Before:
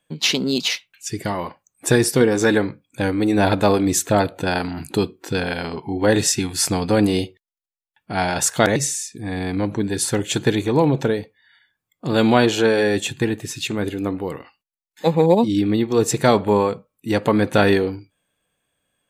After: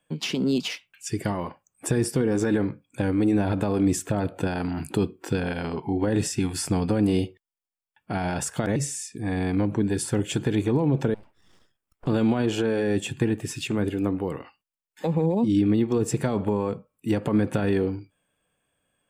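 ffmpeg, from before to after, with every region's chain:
-filter_complex "[0:a]asettb=1/sr,asplit=3[a][b][c];[a]atrim=end=11.144[d];[b]atrim=start=11.14:end=12.07,asetpts=PTS-STARTPTS,afade=t=in:d=0.004:c=qsin,afade=t=out:st=0.926:d=0.004:c=qsin,acompressor=threshold=-39dB:ratio=12:attack=3.2:release=140:knee=1:detection=peak,aeval=exprs='abs(val(0))':c=same[e];[c]atrim=start=12.066[f];[d][e]acrossfade=d=0.004:c1=hsin:c2=qsin[g];[g][f]acrossfade=d=0.004:c1=qsin:c2=hsin,equalizer=f=2k:t=o:w=0.33:g=-3,equalizer=f=4k:t=o:w=0.33:g=-10,equalizer=f=6.3k:t=o:w=0.33:g=-6,equalizer=f=12.5k:t=o:w=0.33:g=-8,alimiter=limit=-11.5dB:level=0:latency=1:release=44,acrossover=split=340[h][i];[i]acompressor=threshold=-30dB:ratio=3[j];[h][j]amix=inputs=2:normalize=0"

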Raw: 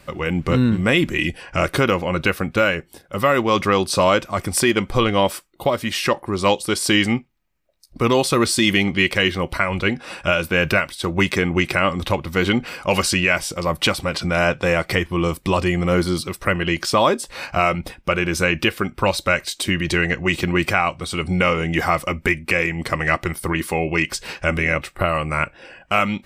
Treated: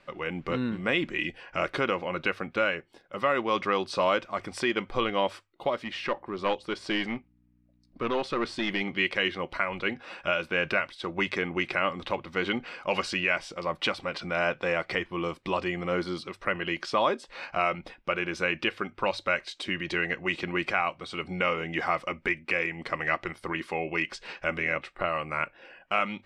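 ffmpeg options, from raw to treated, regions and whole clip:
-filter_complex "[0:a]asettb=1/sr,asplit=3[a][b][c];[a]atrim=end=5.844[d];[b]atrim=start=5.84:end=8.81,asetpts=PTS-STARTPTS,afade=t=in:d=0.004:c=qsin,afade=t=out:st=2.966:d=0.004:c=qsin,aeval=exprs='clip(val(0),-1,0.158)':c=same,highshelf=f=4.7k:g=-9.5,aeval=exprs='val(0)+0.00501*(sin(2*PI*60*n/s)+sin(2*PI*2*60*n/s)/2+sin(2*PI*3*60*n/s)/3+sin(2*PI*4*60*n/s)/4+sin(2*PI*5*60*n/s)/5)':c=same[e];[c]atrim=start=8.806[f];[d][e]acrossfade=d=0.004:c1=hsin:c2=qsin[g];[g][f]acrossfade=d=0.004:c1=qsin:c2=hsin,lowpass=3.8k,equalizer=f=73:w=0.51:g=-14.5,bandreject=f=50:t=h:w=6,bandreject=f=100:t=h:w=6,volume=-7.5dB"

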